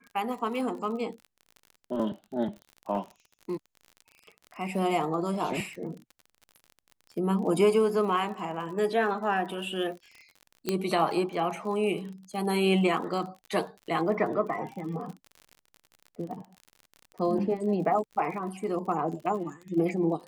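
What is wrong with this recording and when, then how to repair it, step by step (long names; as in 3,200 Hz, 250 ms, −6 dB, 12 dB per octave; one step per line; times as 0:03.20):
surface crackle 42 per second −38 dBFS
0:10.69: click −13 dBFS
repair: click removal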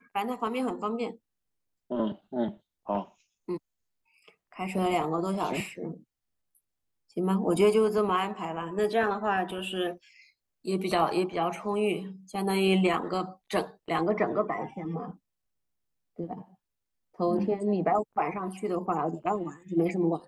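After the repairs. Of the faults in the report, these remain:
none of them is left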